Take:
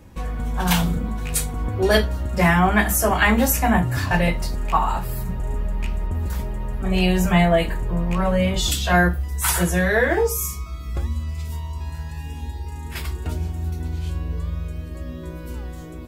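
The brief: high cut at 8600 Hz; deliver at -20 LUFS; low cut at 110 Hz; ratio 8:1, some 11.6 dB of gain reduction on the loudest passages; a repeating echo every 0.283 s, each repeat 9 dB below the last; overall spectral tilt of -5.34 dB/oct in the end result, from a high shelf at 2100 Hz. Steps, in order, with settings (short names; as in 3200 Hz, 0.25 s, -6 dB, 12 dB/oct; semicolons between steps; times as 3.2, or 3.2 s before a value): HPF 110 Hz; LPF 8600 Hz; high shelf 2100 Hz -6 dB; compressor 8:1, threshold -26 dBFS; feedback echo 0.283 s, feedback 35%, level -9 dB; gain +11.5 dB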